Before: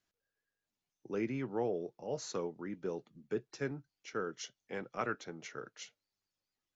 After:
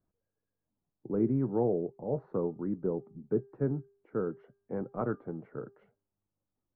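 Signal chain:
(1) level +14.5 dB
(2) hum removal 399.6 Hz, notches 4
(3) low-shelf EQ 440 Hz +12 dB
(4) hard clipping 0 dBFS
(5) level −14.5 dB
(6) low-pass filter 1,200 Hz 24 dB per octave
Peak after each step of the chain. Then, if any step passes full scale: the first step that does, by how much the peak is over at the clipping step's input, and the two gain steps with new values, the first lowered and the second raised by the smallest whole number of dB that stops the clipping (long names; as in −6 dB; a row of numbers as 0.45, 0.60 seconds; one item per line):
−6.5, −6.5, −2.0, −2.0, −16.5, −16.5 dBFS
no step passes full scale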